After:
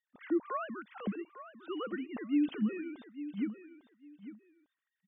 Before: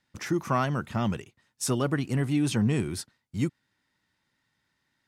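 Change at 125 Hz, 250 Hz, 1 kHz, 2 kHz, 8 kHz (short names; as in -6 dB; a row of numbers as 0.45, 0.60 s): under -20 dB, -5.0 dB, -9.5 dB, -10.0 dB, under -40 dB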